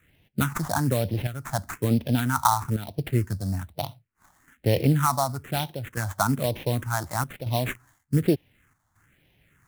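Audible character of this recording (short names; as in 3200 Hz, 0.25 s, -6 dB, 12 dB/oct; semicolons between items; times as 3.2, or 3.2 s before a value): aliases and images of a low sample rate 4900 Hz, jitter 20%; chopped level 0.67 Hz, depth 60%, duty 85%; phasing stages 4, 1.1 Hz, lowest notch 430–1300 Hz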